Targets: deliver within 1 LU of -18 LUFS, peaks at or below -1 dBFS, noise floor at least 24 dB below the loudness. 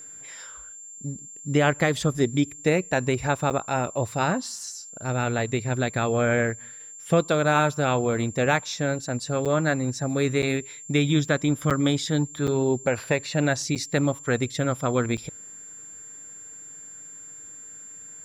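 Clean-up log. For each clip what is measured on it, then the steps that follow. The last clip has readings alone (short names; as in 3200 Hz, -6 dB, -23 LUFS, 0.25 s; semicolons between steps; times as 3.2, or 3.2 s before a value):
dropouts 7; longest dropout 7.2 ms; steady tone 7300 Hz; tone level -40 dBFS; loudness -25.0 LUFS; peak -9.5 dBFS; loudness target -18.0 LUFS
-> interpolate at 3.5/9.45/10.42/11.7/12.47/13.75/15.17, 7.2 ms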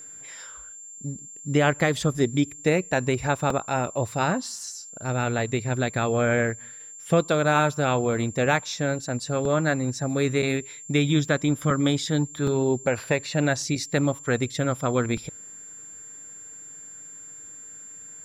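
dropouts 0; steady tone 7300 Hz; tone level -40 dBFS
-> notch 7300 Hz, Q 30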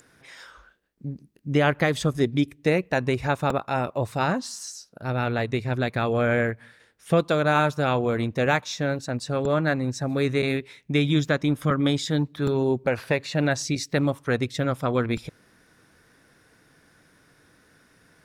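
steady tone none; loudness -25.0 LUFS; peak -9.5 dBFS; loudness target -18.0 LUFS
-> gain +7 dB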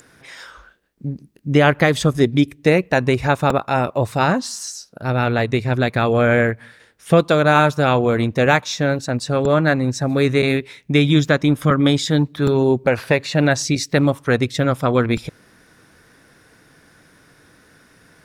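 loudness -18.0 LUFS; peak -2.5 dBFS; noise floor -53 dBFS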